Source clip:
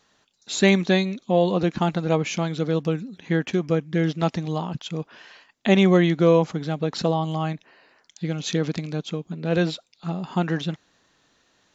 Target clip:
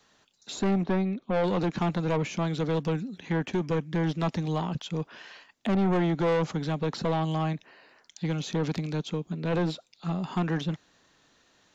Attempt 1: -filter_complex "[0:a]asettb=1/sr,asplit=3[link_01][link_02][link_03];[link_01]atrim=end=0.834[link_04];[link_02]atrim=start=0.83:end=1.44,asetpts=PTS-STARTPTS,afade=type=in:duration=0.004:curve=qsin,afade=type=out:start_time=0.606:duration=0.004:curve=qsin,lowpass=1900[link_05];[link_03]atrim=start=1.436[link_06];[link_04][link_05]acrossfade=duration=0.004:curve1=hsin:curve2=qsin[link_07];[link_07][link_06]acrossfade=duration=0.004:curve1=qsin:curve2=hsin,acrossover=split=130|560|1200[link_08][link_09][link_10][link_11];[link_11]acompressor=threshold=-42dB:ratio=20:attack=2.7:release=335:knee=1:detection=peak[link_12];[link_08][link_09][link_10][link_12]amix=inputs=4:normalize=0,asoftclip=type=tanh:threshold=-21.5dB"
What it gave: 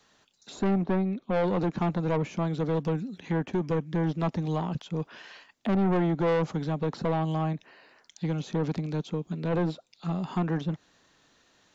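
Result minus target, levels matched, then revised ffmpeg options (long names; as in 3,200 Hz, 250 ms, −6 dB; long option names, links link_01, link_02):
downward compressor: peak gain reduction +8 dB
-filter_complex "[0:a]asettb=1/sr,asplit=3[link_01][link_02][link_03];[link_01]atrim=end=0.834[link_04];[link_02]atrim=start=0.83:end=1.44,asetpts=PTS-STARTPTS,afade=type=in:duration=0.004:curve=qsin,afade=type=out:start_time=0.606:duration=0.004:curve=qsin,lowpass=1900[link_05];[link_03]atrim=start=1.436[link_06];[link_04][link_05]acrossfade=duration=0.004:curve1=hsin:curve2=qsin[link_07];[link_07][link_06]acrossfade=duration=0.004:curve1=qsin:curve2=hsin,acrossover=split=130|560|1200[link_08][link_09][link_10][link_11];[link_11]acompressor=threshold=-33.5dB:ratio=20:attack=2.7:release=335:knee=1:detection=peak[link_12];[link_08][link_09][link_10][link_12]amix=inputs=4:normalize=0,asoftclip=type=tanh:threshold=-21.5dB"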